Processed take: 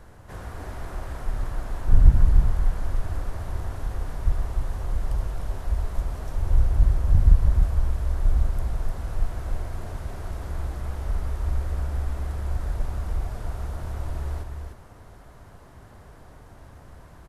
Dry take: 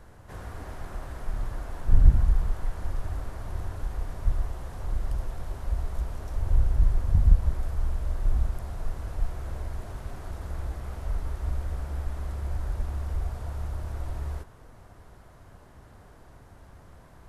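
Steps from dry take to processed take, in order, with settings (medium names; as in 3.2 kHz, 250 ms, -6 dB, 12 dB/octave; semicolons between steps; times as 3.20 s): delay 302 ms -5.5 dB; trim +2.5 dB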